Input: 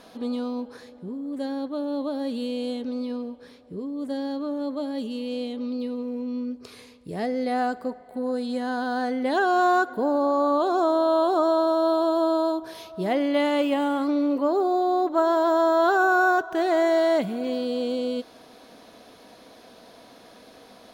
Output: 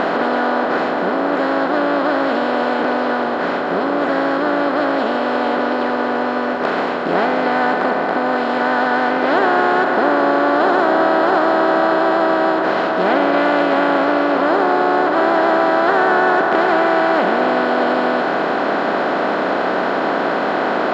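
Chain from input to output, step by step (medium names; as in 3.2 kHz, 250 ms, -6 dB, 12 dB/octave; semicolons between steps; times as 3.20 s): spectral levelling over time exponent 0.2; harmony voices +3 st -6 dB; distance through air 150 m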